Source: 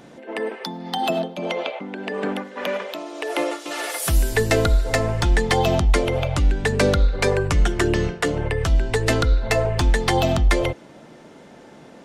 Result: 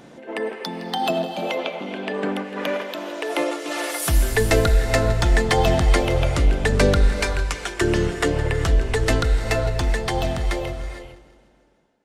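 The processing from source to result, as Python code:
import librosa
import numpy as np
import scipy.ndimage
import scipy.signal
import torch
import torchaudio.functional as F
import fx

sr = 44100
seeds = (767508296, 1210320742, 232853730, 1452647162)

y = fx.fade_out_tail(x, sr, length_s=3.45)
y = fx.highpass(y, sr, hz=1300.0, slope=6, at=(7.13, 7.81))
y = fx.echo_feedback(y, sr, ms=163, feedback_pct=56, wet_db=-17)
y = fx.rev_gated(y, sr, seeds[0], gate_ms=480, shape='rising', drr_db=8.5)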